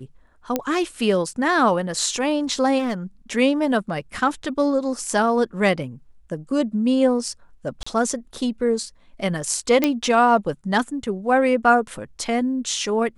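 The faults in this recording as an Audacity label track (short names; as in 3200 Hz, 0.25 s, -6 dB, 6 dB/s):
0.560000	0.560000	pop -7 dBFS
2.780000	2.940000	clipped -20.5 dBFS
7.830000	7.870000	gap 35 ms
9.840000	9.840000	pop -4 dBFS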